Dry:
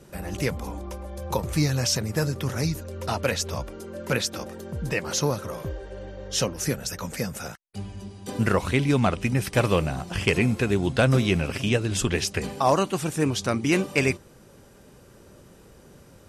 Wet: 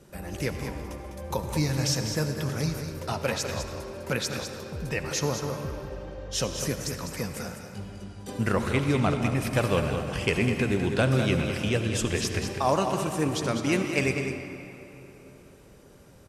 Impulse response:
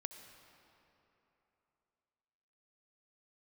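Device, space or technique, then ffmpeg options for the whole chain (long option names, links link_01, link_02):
cave: -filter_complex "[0:a]aecho=1:1:202:0.398[link_01];[1:a]atrim=start_sample=2205[link_02];[link_01][link_02]afir=irnorm=-1:irlink=0"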